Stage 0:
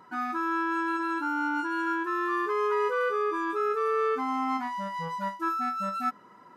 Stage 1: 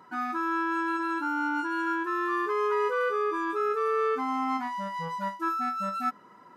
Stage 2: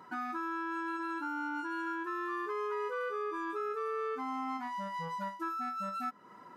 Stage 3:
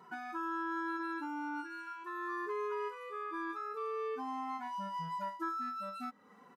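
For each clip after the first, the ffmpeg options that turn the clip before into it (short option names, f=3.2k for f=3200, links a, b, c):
-af "highpass=82"
-af "acompressor=threshold=-38dB:ratio=2.5"
-filter_complex "[0:a]asplit=2[a][b];[b]adelay=2.3,afreqshift=-0.44[c];[a][c]amix=inputs=2:normalize=1"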